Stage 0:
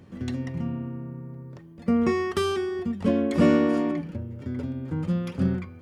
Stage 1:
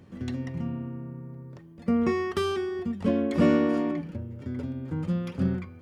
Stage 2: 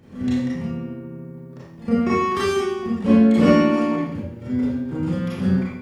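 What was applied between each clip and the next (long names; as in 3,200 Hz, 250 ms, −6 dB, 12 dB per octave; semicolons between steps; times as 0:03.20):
dynamic equaliser 8,900 Hz, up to −4 dB, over −54 dBFS, Q 0.86; level −2 dB
four-comb reverb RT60 0.65 s, combs from 28 ms, DRR −8 dB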